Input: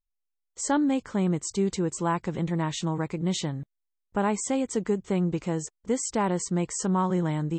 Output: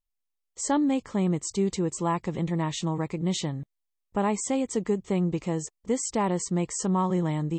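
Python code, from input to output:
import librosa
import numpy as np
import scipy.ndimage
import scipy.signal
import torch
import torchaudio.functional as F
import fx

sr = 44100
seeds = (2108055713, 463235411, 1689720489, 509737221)

y = fx.notch(x, sr, hz=1500.0, q=5.3)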